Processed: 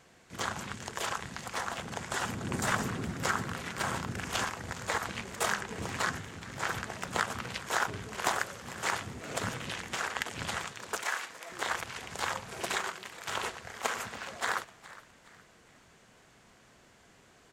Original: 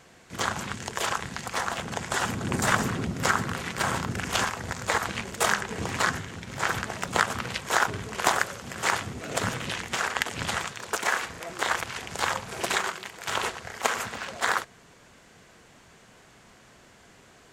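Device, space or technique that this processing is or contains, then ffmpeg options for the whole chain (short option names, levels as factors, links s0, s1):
parallel distortion: -filter_complex "[0:a]asplit=2[s0][s1];[s1]asoftclip=type=hard:threshold=0.119,volume=0.335[s2];[s0][s2]amix=inputs=2:normalize=0,asettb=1/sr,asplit=3[s3][s4][s5];[s3]atrim=end=11.024[s6];[s4]atrim=start=11.02:end=11.52,asetpts=PTS-STARTPTS,afade=t=in:d=0.004:c=qsin,afade=t=out:st=0.496:d=0.004:c=qsin,highpass=f=790:p=1[s7];[s5]atrim=start=11.516[s8];[s6][s7]acrossfade=d=0.004:c1=hsin:c2=qsin[s9];[s9][s8]acrossfade=d=0.004:c1=qsin:c2=hsin,asplit=4[s10][s11][s12][s13];[s11]adelay=415,afreqshift=100,volume=0.119[s14];[s12]adelay=830,afreqshift=200,volume=0.0452[s15];[s13]adelay=1245,afreqshift=300,volume=0.0172[s16];[s10][s14][s15][s16]amix=inputs=4:normalize=0,volume=0.376"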